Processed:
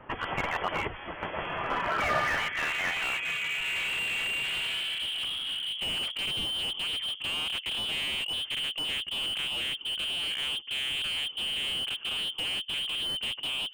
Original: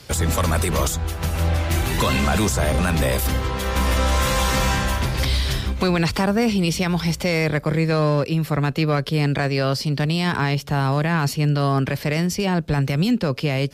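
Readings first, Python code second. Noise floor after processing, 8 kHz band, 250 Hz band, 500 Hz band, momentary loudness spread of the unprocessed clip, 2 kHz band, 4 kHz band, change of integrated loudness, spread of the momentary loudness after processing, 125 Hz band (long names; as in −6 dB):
−44 dBFS, −14.0 dB, −25.0 dB, −17.0 dB, 3 LU, −4.0 dB, +2.0 dB, −8.5 dB, 3 LU, −28.5 dB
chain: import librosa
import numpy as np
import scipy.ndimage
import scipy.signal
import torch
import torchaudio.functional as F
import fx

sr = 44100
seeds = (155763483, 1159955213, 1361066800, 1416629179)

y = fx.filter_sweep_bandpass(x, sr, from_hz=2600.0, to_hz=320.0, start_s=1.58, end_s=4.9, q=2.2)
y = fx.freq_invert(y, sr, carrier_hz=3300)
y = fx.slew_limit(y, sr, full_power_hz=46.0)
y = F.gain(torch.from_numpy(y), 5.5).numpy()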